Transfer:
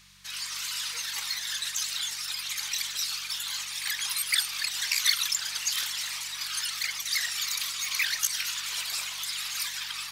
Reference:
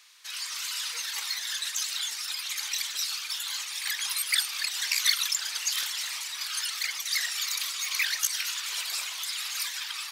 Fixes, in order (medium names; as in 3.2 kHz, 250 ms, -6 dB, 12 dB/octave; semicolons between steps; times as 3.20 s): de-hum 47.4 Hz, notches 4